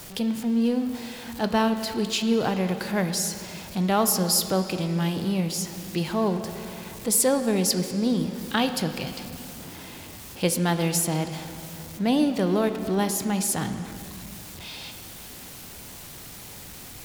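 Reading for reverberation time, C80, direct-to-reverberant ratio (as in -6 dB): 2.8 s, 10.0 dB, 8.0 dB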